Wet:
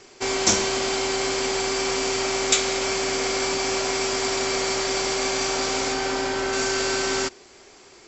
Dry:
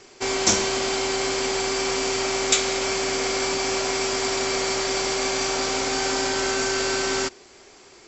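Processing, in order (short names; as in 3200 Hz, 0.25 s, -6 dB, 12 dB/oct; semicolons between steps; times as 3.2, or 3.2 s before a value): 5.92–6.52 high shelf 6500 Hz -> 3900 Hz -10 dB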